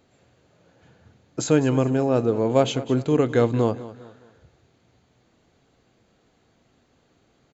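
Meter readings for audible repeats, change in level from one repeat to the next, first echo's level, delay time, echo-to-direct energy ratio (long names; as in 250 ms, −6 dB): 3, −8.5 dB, −16.0 dB, 204 ms, −15.5 dB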